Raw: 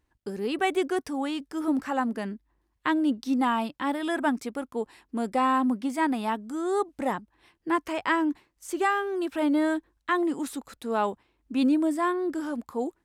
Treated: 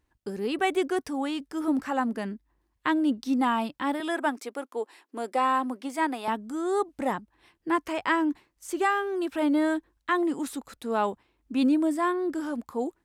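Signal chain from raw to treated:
0:04.00–0:06.28: high-pass filter 310 Hz 24 dB per octave

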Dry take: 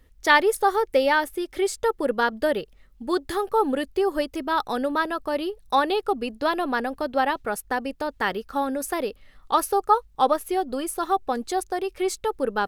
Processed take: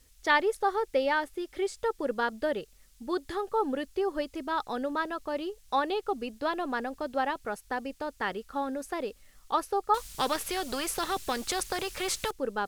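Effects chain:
background noise violet −46 dBFS
high-frequency loss of the air 51 metres
0:09.94–0:12.31: every bin compressed towards the loudest bin 2 to 1
level −6.5 dB

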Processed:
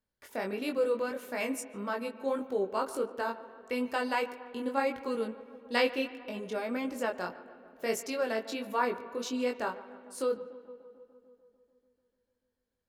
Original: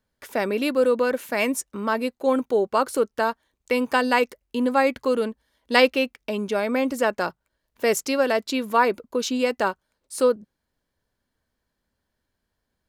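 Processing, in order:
feedback echo with a low-pass in the loop 147 ms, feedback 75%, low-pass 2,400 Hz, level −18 dB
chorus effect 1.6 Hz, delay 19.5 ms, depth 3.2 ms
spring reverb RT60 2.1 s, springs 48/53 ms, chirp 80 ms, DRR 16 dB
level −7.5 dB

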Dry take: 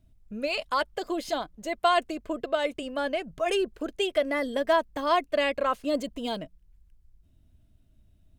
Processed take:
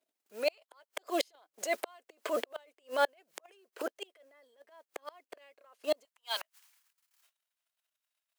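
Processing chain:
transient designer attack −11 dB, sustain +11 dB
noise that follows the level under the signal 24 dB
noise gate −53 dBFS, range −17 dB
notch filter 3,600 Hz, Q 28
gate with flip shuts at −22 dBFS, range −39 dB
high-pass filter 430 Hz 24 dB per octave, from 0:06.05 970 Hz
level +6.5 dB

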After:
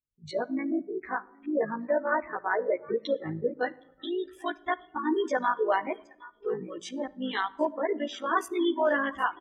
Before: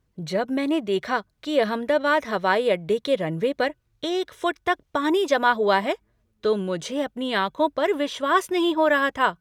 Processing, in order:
0:00.57–0:02.90: low-pass filter 2,600 Hz 24 dB per octave
gate on every frequency bin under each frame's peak −20 dB strong
repeating echo 767 ms, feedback 47%, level −19 dB
noise reduction from a noise print of the clip's start 23 dB
rectangular room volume 3,000 cubic metres, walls furnished, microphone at 0.42 metres
amplitude modulation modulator 54 Hz, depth 55%
barber-pole flanger 10.5 ms +0.64 Hz

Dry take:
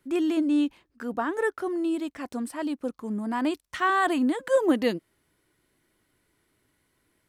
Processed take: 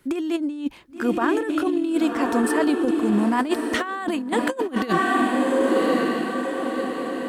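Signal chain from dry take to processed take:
feedback delay with all-pass diffusion 1,114 ms, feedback 50%, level −7 dB
compressor whose output falls as the input rises −28 dBFS, ratio −0.5
level +7.5 dB

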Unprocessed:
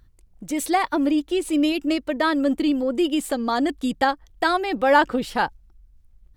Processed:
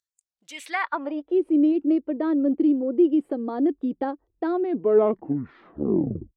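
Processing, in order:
turntable brake at the end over 1.82 s
band-pass filter sweep 7,000 Hz → 350 Hz, 0:00.19–0:01.44
noise reduction from a noise print of the clip's start 11 dB
level +3.5 dB

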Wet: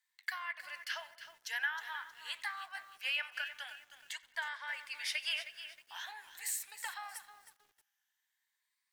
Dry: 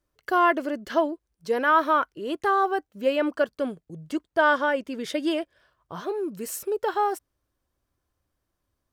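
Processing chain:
rippled gain that drifts along the octave scale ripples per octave 1, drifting +0.47 Hz, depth 7 dB
elliptic high-pass filter 860 Hz, stop band 60 dB
parametric band 2,300 Hz −2.5 dB 0.38 octaves
downward compressor 4 to 1, threshold −35 dBFS, peak gain reduction 15.5 dB
flanger 1.9 Hz, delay 3.6 ms, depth 8.5 ms, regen −74%
high shelf with overshoot 1,500 Hz +7 dB, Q 3
feedback echo with a low-pass in the loop 91 ms, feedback 62%, low-pass 3,900 Hz, level −20 dB
on a send at −21.5 dB: convolution reverb RT60 1.0 s, pre-delay 4 ms
on the sum: feedback echo at a low word length 314 ms, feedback 35%, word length 9 bits, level −11.5 dB
level −2 dB

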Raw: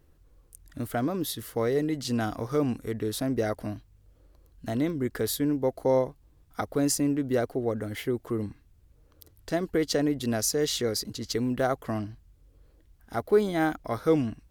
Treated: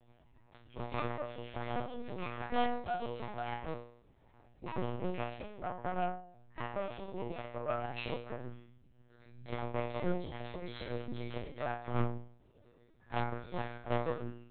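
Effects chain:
pitch glide at a constant tempo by +10 semitones ending unshifted
downward compressor 16 to 1, threshold −36 dBFS, peak gain reduction 20.5 dB
tuned comb filter 120 Hz, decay 0.61 s, harmonics all, mix 100%
harmonic generator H 2 −9 dB, 7 −41 dB, 8 −15 dB, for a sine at −34.5 dBFS
linear-prediction vocoder at 8 kHz pitch kept
level +16 dB

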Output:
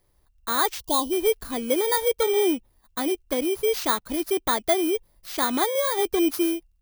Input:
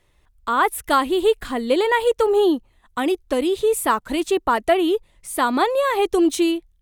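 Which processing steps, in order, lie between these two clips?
samples in bit-reversed order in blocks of 16 samples
gain on a spectral selection 0:00.80–0:01.12, 1,100–2,800 Hz −26 dB
level −4.5 dB

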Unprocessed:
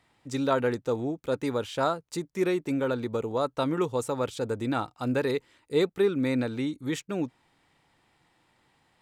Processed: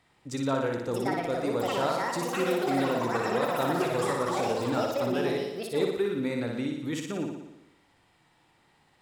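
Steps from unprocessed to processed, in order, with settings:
downward compressor 1.5 to 1, threshold −35 dBFS, peak gain reduction 6 dB
delay with pitch and tempo change per echo 721 ms, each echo +6 semitones, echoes 3
flutter between parallel walls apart 10.1 metres, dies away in 0.89 s

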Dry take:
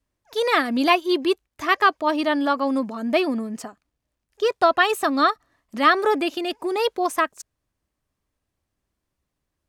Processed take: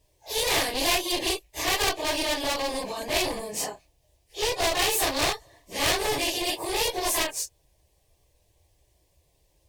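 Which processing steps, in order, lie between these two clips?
random phases in long frames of 100 ms
asymmetric clip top −23.5 dBFS
phaser with its sweep stopped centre 560 Hz, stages 4
every bin compressed towards the loudest bin 2 to 1
level +1.5 dB

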